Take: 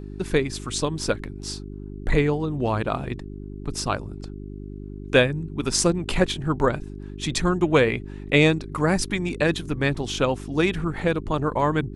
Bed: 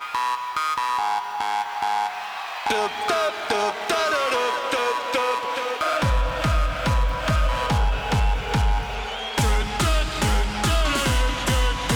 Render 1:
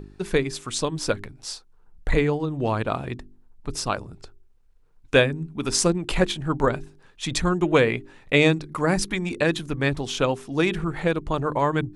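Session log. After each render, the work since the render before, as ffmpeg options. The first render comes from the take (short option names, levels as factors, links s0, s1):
-af "bandreject=f=50:t=h:w=4,bandreject=f=100:t=h:w=4,bandreject=f=150:t=h:w=4,bandreject=f=200:t=h:w=4,bandreject=f=250:t=h:w=4,bandreject=f=300:t=h:w=4,bandreject=f=350:t=h:w=4,bandreject=f=400:t=h:w=4"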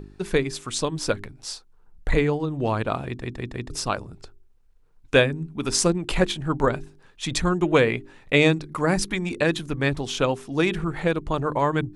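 -filter_complex "[0:a]asplit=5[s0][s1][s2][s3][s4];[s0]atrim=end=3.222[s5];[s1]atrim=start=3.058:end=3.222[s6];[s2]atrim=start=3.058:end=3.222[s7];[s3]atrim=start=3.058:end=3.222[s8];[s4]atrim=start=3.698[s9];[s5][s6]acrossfade=d=0.004:c1=hsin:c2=hsin[s10];[s10][s7]acrossfade=d=0.004:c1=hsin:c2=hsin[s11];[s11][s8]acrossfade=d=0.004:c1=hsin:c2=hsin[s12];[s12][s9]acrossfade=d=0.004:c1=hsin:c2=hsin"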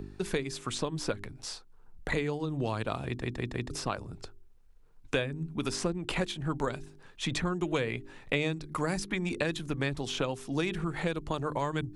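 -filter_complex "[0:a]acrossover=split=97|3100[s0][s1][s2];[s0]acompressor=threshold=0.00708:ratio=4[s3];[s1]acompressor=threshold=0.0316:ratio=4[s4];[s2]acompressor=threshold=0.00891:ratio=4[s5];[s3][s4][s5]amix=inputs=3:normalize=0"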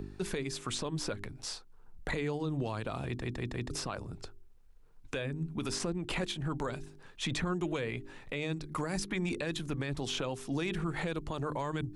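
-af "alimiter=level_in=1.12:limit=0.0631:level=0:latency=1:release=13,volume=0.891"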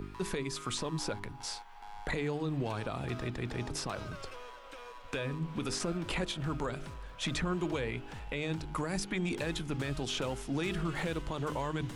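-filter_complex "[1:a]volume=0.0531[s0];[0:a][s0]amix=inputs=2:normalize=0"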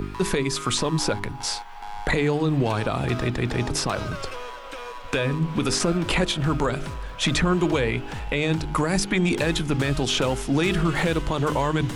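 -af "volume=3.98"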